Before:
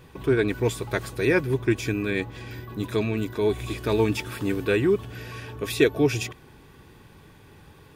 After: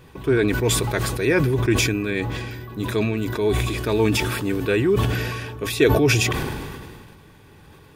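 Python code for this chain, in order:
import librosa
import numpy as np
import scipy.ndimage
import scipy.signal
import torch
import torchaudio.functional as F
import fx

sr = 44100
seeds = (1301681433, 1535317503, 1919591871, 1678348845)

y = fx.sustainer(x, sr, db_per_s=29.0)
y = y * 10.0 ** (1.5 / 20.0)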